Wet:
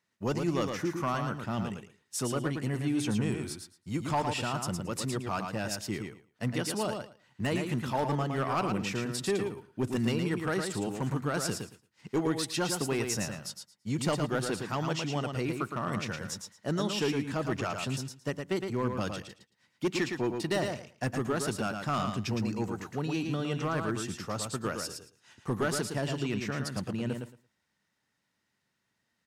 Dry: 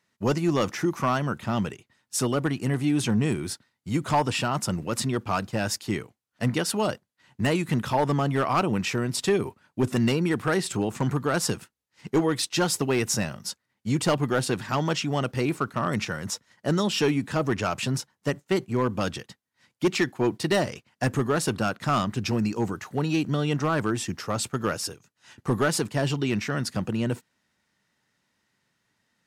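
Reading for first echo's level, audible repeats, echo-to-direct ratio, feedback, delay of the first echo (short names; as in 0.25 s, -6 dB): -5.5 dB, 2, -5.5 dB, 16%, 0.112 s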